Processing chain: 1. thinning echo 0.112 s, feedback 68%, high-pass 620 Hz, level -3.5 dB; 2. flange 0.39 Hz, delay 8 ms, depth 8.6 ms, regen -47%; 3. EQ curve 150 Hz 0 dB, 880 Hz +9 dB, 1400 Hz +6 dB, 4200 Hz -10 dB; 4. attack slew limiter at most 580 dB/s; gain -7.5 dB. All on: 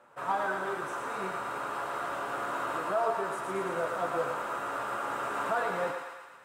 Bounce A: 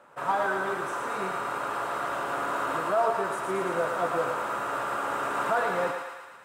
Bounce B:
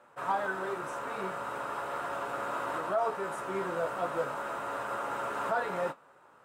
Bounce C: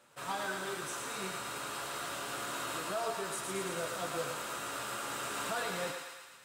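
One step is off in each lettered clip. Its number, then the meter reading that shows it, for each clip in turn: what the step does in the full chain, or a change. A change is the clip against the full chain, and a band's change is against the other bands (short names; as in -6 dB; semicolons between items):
2, loudness change +4.0 LU; 1, 125 Hz band +2.0 dB; 3, 8 kHz band +13.5 dB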